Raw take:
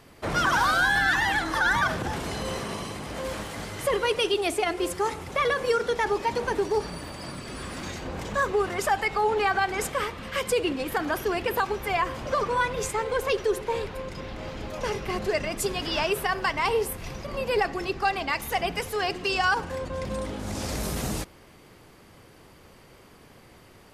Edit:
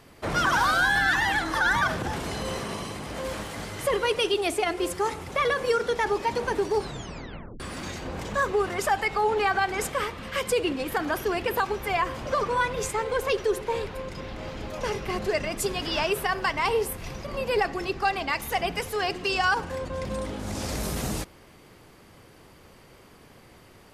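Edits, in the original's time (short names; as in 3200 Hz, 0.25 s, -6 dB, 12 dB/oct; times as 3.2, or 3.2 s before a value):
6.77 tape stop 0.83 s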